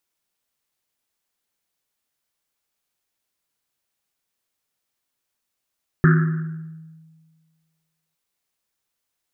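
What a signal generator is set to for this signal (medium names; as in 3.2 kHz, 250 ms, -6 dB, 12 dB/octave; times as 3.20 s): Risset drum length 2.11 s, pitch 160 Hz, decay 1.71 s, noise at 1.5 kHz, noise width 520 Hz, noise 20%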